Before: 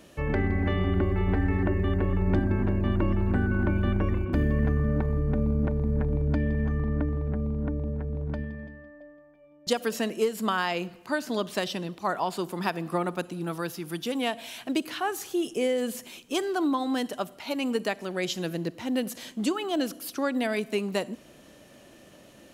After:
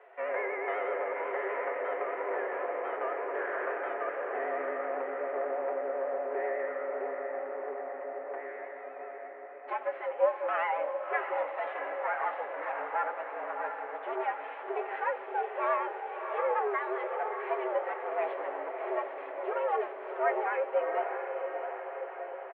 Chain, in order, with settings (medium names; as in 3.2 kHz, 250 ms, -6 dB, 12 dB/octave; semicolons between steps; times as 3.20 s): comb filter that takes the minimum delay 7.1 ms; harmonic-percussive split percussive -10 dB; in parallel at -5 dB: hard clipper -34 dBFS, distortion -6 dB; on the sum: vibrato 8.1 Hz 73 cents; doubling 19 ms -12 dB; echo that smears into a reverb 666 ms, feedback 63%, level -6 dB; mistuned SSB +120 Hz 350–2100 Hz